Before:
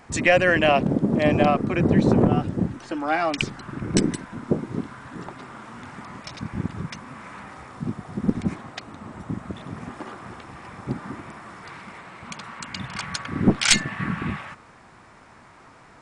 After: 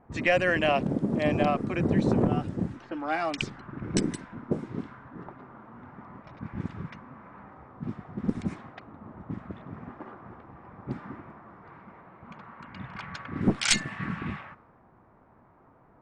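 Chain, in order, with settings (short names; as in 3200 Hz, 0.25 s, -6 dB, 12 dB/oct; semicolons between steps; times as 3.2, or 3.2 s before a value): low-pass opened by the level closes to 800 Hz, open at -19 dBFS; gain -6 dB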